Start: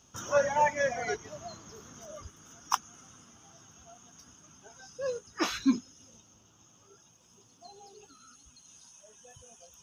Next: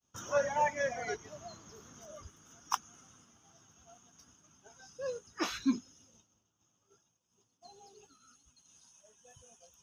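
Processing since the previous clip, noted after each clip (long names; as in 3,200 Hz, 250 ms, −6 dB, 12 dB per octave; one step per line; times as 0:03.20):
downward expander −52 dBFS
level −4.5 dB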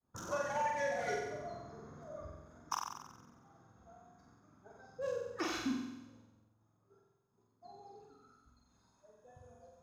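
adaptive Wiener filter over 15 samples
downward compressor 6 to 1, threshold −36 dBFS, peak gain reduction 11.5 dB
flutter between parallel walls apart 7.9 metres, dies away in 1 s
level +1 dB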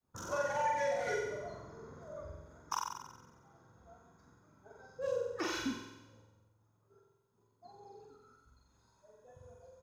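double-tracking delay 44 ms −4 dB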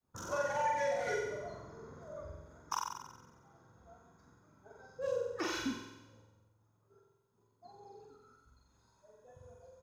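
no processing that can be heard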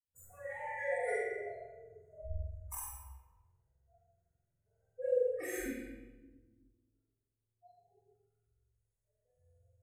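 noise reduction from a noise print of the clip's start 26 dB
drawn EQ curve 110 Hz 0 dB, 260 Hz −21 dB, 370 Hz −11 dB, 570 Hz −6 dB, 1,100 Hz −28 dB, 2,000 Hz −7 dB, 3,000 Hz −28 dB, 5,500 Hz −30 dB, 8,000 Hz +12 dB, 14,000 Hz +5 dB
convolution reverb RT60 1.3 s, pre-delay 4 ms, DRR −8 dB
level +3.5 dB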